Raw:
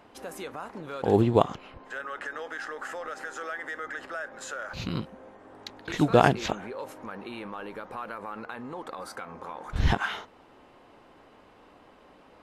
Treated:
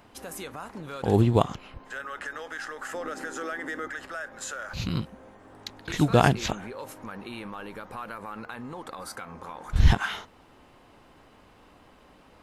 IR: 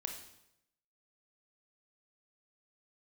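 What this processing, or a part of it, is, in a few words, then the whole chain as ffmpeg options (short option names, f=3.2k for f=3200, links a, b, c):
smiley-face EQ: -filter_complex "[0:a]asettb=1/sr,asplit=3[a][b][c];[a]atrim=end=2.944[d];[b]atrim=start=2.94:end=3.88,asetpts=PTS-STARTPTS,afade=t=in:d=0.004:c=qsin,afade=t=out:st=0.936:d=0.004:c=qsin,equalizer=f=280:t=o:w=1.5:g=12.5[e];[c]atrim=start=3.876[f];[d][e]acrossfade=d=0.004:c1=hsin:c2=qsin[g];[g][f]acrossfade=d=0.004:c1=qsin:c2=hsin,lowshelf=f=190:g=7.5,equalizer=f=440:t=o:w=1.9:g=-3.5,highshelf=f=5.7k:g=8.5"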